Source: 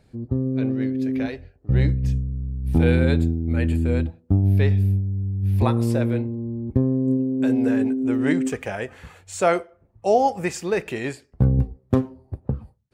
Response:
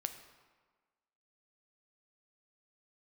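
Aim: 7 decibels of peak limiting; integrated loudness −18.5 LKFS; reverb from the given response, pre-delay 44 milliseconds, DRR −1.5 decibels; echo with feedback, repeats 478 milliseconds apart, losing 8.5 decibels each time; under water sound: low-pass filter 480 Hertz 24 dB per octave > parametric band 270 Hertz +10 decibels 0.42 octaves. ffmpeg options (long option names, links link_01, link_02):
-filter_complex "[0:a]alimiter=limit=-12dB:level=0:latency=1,aecho=1:1:478|956|1434|1912:0.376|0.143|0.0543|0.0206,asplit=2[link_01][link_02];[1:a]atrim=start_sample=2205,adelay=44[link_03];[link_02][link_03]afir=irnorm=-1:irlink=0,volume=2dB[link_04];[link_01][link_04]amix=inputs=2:normalize=0,lowpass=frequency=480:width=0.5412,lowpass=frequency=480:width=1.3066,equalizer=frequency=270:width_type=o:width=0.42:gain=10,volume=0.5dB"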